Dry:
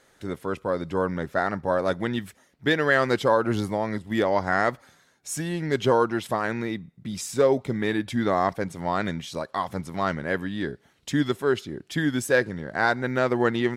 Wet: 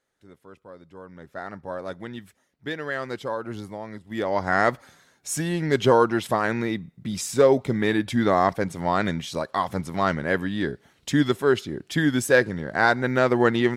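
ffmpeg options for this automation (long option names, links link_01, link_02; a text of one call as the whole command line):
ffmpeg -i in.wav -af "volume=3dB,afade=type=in:start_time=1.06:duration=0.47:silence=0.354813,afade=type=in:start_time=4.06:duration=0.61:silence=0.251189" out.wav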